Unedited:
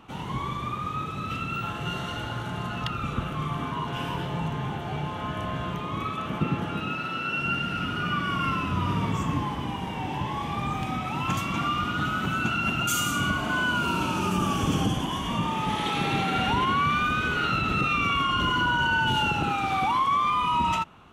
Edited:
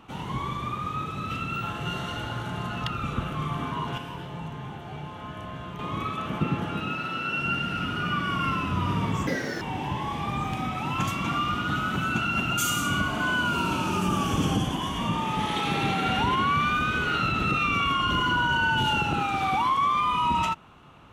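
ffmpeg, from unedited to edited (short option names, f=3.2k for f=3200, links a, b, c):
-filter_complex "[0:a]asplit=5[a][b][c][d][e];[a]atrim=end=3.982[f];[b]atrim=start=3.978:end=5.792,asetpts=PTS-STARTPTS,volume=-6.5dB[g];[c]atrim=start=5.788:end=9.274[h];[d]atrim=start=9.27:end=9.91,asetpts=PTS-STARTPTS,asetrate=82026,aresample=44100,atrim=end_sample=15174,asetpts=PTS-STARTPTS[i];[e]atrim=start=9.906[j];[f][g]acrossfade=d=0.004:c1=hsin:c2=hsin[k];[k][h]acrossfade=d=0.004:c1=hsin:c2=hsin[l];[l][i]acrossfade=d=0.004:c1=hsin:c2=hsin[m];[m][j]acrossfade=d=0.004:c1=hsin:c2=hsin"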